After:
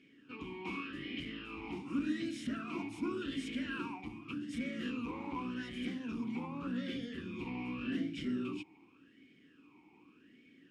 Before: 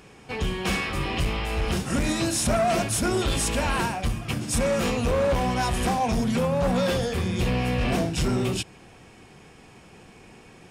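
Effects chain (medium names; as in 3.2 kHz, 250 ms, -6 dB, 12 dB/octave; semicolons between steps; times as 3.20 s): talking filter i-u 0.86 Hz; trim -1 dB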